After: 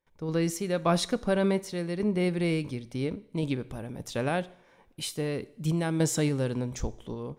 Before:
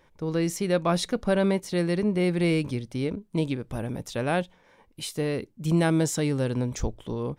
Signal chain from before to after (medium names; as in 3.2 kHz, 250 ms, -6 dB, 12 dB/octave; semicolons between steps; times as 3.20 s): gate with hold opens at -51 dBFS; random-step tremolo; two-slope reverb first 0.64 s, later 2.1 s, from -21 dB, DRR 16 dB